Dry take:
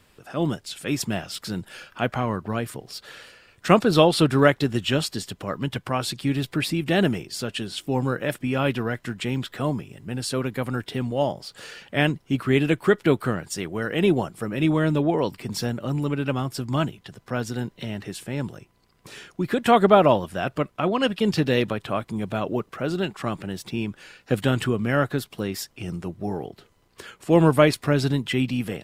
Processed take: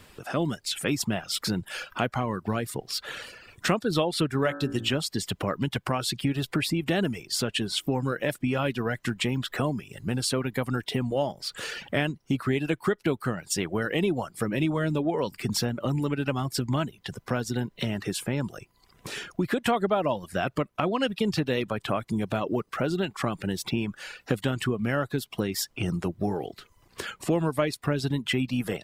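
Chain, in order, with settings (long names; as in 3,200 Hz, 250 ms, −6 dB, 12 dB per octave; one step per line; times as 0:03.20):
reverb reduction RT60 0.55 s
0:04.33–0:04.94: hum removal 56.62 Hz, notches 31
downward compressor 4 to 1, threshold −31 dBFS, peak gain reduction 17.5 dB
level +6.5 dB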